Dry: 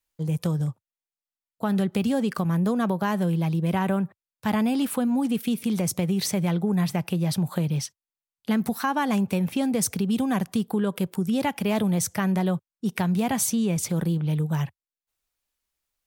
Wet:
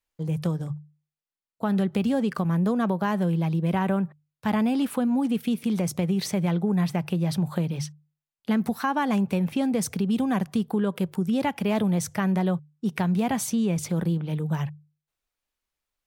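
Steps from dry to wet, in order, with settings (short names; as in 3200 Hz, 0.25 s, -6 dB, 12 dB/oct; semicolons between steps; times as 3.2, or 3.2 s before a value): high shelf 4900 Hz -8 dB; notches 50/100/150 Hz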